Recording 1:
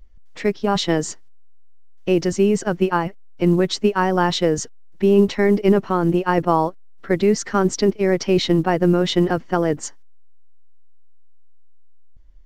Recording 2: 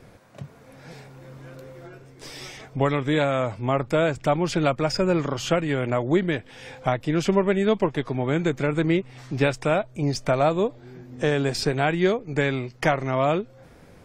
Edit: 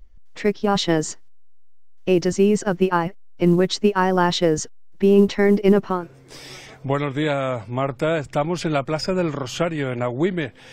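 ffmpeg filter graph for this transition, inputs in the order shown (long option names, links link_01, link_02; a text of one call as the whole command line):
ffmpeg -i cue0.wav -i cue1.wav -filter_complex "[0:a]apad=whole_dur=10.72,atrim=end=10.72,atrim=end=6.07,asetpts=PTS-STARTPTS[link_01];[1:a]atrim=start=1.8:end=6.63,asetpts=PTS-STARTPTS[link_02];[link_01][link_02]acrossfade=duration=0.18:curve1=tri:curve2=tri" out.wav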